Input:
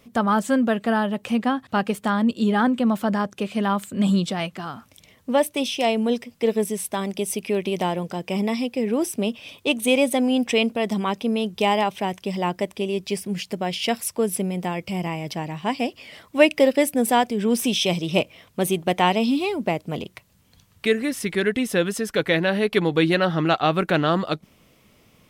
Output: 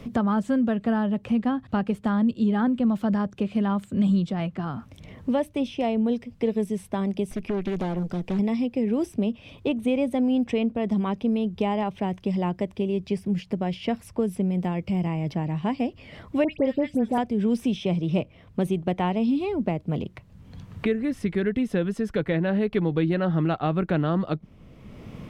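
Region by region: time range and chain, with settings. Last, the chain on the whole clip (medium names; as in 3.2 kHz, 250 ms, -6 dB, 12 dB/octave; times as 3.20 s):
7.31–8.39 s: treble shelf 6.5 kHz +6 dB + valve stage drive 23 dB, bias 0.5 + loudspeaker Doppler distortion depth 0.47 ms
16.44–17.18 s: peaking EQ 11 kHz -12 dB 1.5 oct + phase dispersion highs, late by 86 ms, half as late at 2.1 kHz + tape noise reduction on one side only encoder only
whole clip: RIAA curve playback; three bands compressed up and down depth 70%; trim -8 dB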